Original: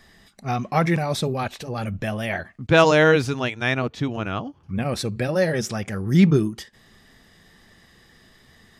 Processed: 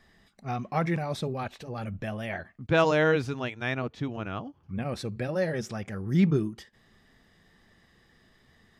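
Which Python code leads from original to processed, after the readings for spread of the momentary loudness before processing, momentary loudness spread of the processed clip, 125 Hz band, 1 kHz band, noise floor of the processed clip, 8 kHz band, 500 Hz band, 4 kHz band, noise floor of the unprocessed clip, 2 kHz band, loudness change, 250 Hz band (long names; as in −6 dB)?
13 LU, 13 LU, −7.0 dB, −7.5 dB, −63 dBFS, −12.5 dB, −7.0 dB, −10.0 dB, −55 dBFS, −8.0 dB, −7.5 dB, −7.0 dB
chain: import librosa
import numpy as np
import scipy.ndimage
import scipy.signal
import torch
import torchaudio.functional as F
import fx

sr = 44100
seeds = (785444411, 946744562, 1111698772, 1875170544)

y = fx.high_shelf(x, sr, hz=4300.0, db=-7.5)
y = F.gain(torch.from_numpy(y), -7.0).numpy()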